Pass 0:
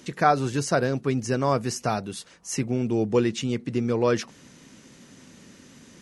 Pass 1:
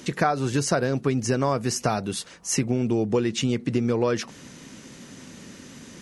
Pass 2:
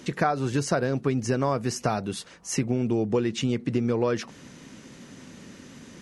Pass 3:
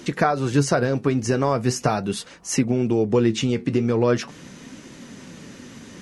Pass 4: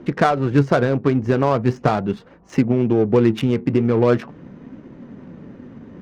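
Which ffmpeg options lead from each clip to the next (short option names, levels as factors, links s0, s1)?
-af "acompressor=threshold=0.0562:ratio=6,volume=2"
-af "highshelf=f=4300:g=-5.5,volume=0.841"
-af "flanger=delay=2.7:depth=8.7:regen=69:speed=0.41:shape=triangular,volume=2.82"
-af "adynamicsmooth=sensitivity=1.5:basefreq=880,volume=1.5"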